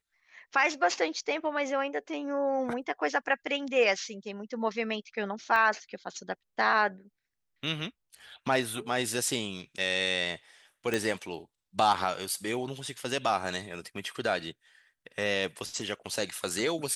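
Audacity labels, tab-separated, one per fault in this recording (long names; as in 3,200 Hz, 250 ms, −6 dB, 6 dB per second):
5.560000	5.560000	drop-out 2.7 ms
10.940000	10.940000	click −14 dBFS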